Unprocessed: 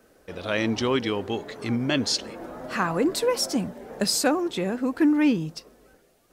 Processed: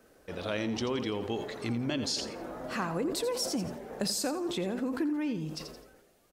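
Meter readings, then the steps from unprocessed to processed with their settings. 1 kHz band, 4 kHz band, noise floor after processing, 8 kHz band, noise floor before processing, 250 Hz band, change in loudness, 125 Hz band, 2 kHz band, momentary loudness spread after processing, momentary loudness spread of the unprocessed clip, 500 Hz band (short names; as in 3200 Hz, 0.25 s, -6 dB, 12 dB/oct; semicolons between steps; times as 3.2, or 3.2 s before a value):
-8.5 dB, -7.0 dB, -62 dBFS, -6.5 dB, -60 dBFS, -8.5 dB, -8.0 dB, -5.5 dB, -9.5 dB, 8 LU, 14 LU, -7.0 dB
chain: dynamic EQ 1700 Hz, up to -4 dB, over -38 dBFS, Q 1; compressor, threshold -26 dBFS, peak gain reduction 9.5 dB; on a send: feedback echo 85 ms, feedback 34%, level -12 dB; on the sum: sustainer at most 61 dB/s; gain -3 dB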